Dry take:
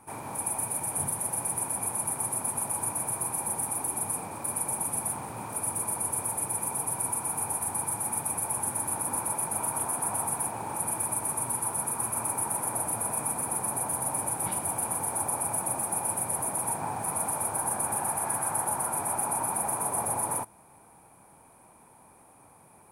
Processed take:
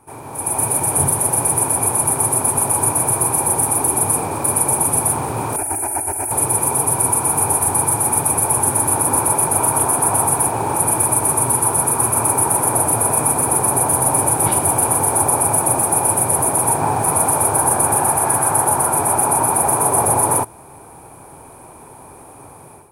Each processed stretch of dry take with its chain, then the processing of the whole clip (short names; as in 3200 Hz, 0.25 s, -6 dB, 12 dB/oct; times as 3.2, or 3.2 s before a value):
5.56–6.31 bell 220 Hz -14 dB 0.42 oct + negative-ratio compressor -35 dBFS + fixed phaser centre 740 Hz, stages 8
whole clip: low shelf 410 Hz +5 dB; AGC gain up to 13 dB; thirty-one-band EQ 200 Hz -10 dB, 400 Hz +5 dB, 2000 Hz -3 dB; gain +1.5 dB